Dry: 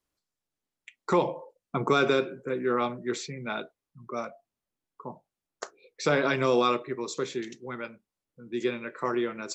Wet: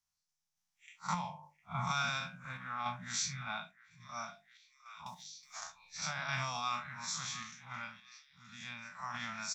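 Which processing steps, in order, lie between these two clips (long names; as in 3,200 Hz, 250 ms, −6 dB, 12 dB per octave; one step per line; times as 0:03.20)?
spectrum smeared in time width 93 ms
mains-hum notches 50/100/150/200/250/300/350 Hz
brickwall limiter −21.5 dBFS, peak gain reduction 8.5 dB
Chebyshev band-stop filter 190–760 Hz, order 3
parametric band 5,800 Hz +10.5 dB 0.53 octaves
double-tracking delay 12 ms −12 dB
echo through a band-pass that steps 706 ms, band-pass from 1,600 Hz, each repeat 0.7 octaves, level −11 dB
sample-and-hold tremolo
0:05.06–0:06.02: multiband upward and downward compressor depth 100%
level +1.5 dB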